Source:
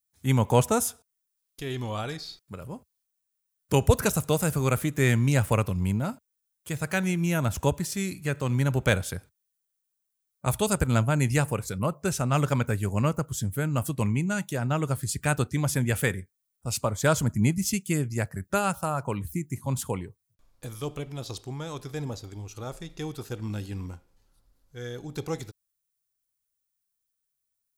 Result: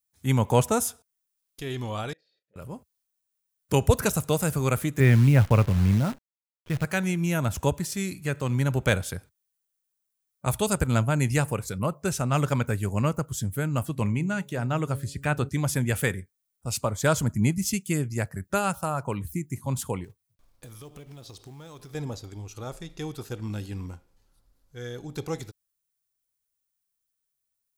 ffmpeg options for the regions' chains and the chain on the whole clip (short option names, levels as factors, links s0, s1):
-filter_complex "[0:a]asettb=1/sr,asplit=3[s0][s1][s2];[s0]atrim=end=2.134[s3];[s1]atrim=start=2.13:end=2.56,asetpts=PTS-STARTPTS,afade=t=in:d=0.004:c=qsin,afade=t=out:st=0.426:d=0.004:c=qsin,asplit=2[s4][s5];[s5]adelay=35,volume=0.237[s6];[s4][s6]amix=inputs=2:normalize=0,atrim=end_sample=18963,acompressor=threshold=0.00501:ratio=16:attack=3.2:release=140:knee=1:detection=peak,asplit=3[s7][s8][s9];[s7]bandpass=f=530:t=q:w=8,volume=1[s10];[s8]bandpass=f=1840:t=q:w=8,volume=0.501[s11];[s9]bandpass=f=2480:t=q:w=8,volume=0.355[s12];[s10][s11][s12]amix=inputs=3:normalize=0[s13];[s2]atrim=start=2.556[s14];[s3][s13]acrossfade=d=0.004:c1=hsin:c2=qsin[s15];[s15][s14]acrossfade=d=0.004:c1=qsin:c2=hsin,asettb=1/sr,asplit=3[s16][s17][s18];[s16]atrim=end=5.004[s19];[s17]atrim=start=5:end=6.85,asetpts=PTS-STARTPTS,afade=t=in:d=0.004:c=qsin,afade=t=out:st=1.846:d=0.004:c=qsin,lowpass=f=3000:w=0.5412,lowpass=f=3000:w=1.3066,lowshelf=f=180:g=8.5,acrusher=bits=7:dc=4:mix=0:aa=0.000001[s20];[s18]atrim=start=6.846[s21];[s19][s20]acrossfade=d=0.004:c1=hsin:c2=qsin[s22];[s22][s21]acrossfade=d=0.004:c1=qsin:c2=hsin,asettb=1/sr,asplit=3[s23][s24][s25];[s23]atrim=end=13.854[s26];[s24]atrim=start=13.85:end=15.49,asetpts=PTS-STARTPTS,afade=t=in:d=0.004:c=qsin,afade=t=out:st=1.636:d=0.004:c=qsin,bandreject=f=139.3:t=h:w=4,bandreject=f=278.6:t=h:w=4,bandreject=f=417.9:t=h:w=4,bandreject=f=557.2:t=h:w=4,acrossover=split=3900[s27][s28];[s28]acompressor=threshold=0.00631:ratio=4:attack=1:release=60[s29];[s27][s29]amix=inputs=2:normalize=0[s30];[s25]atrim=start=15.486[s31];[s26][s30]acrossfade=d=0.004:c1=hsin:c2=qsin[s32];[s32][s31]acrossfade=d=0.004:c1=qsin:c2=hsin,asettb=1/sr,asplit=3[s33][s34][s35];[s33]atrim=end=20.044[s36];[s34]atrim=start=20.04:end=21.95,asetpts=PTS-STARTPTS,afade=t=in:d=0.004:c=qsin,afade=t=out:st=1.906:d=0.004:c=qsin,acompressor=threshold=0.00891:ratio=6:attack=3.2:release=140:knee=1:detection=peak,bandreject=f=7100:w=17,acrusher=bits=5:mode=log:mix=0:aa=0.000001[s37];[s35]atrim=start=21.946[s38];[s36][s37]acrossfade=d=0.004:c1=hsin:c2=qsin[s39];[s39][s38]acrossfade=d=0.004:c1=qsin:c2=hsin"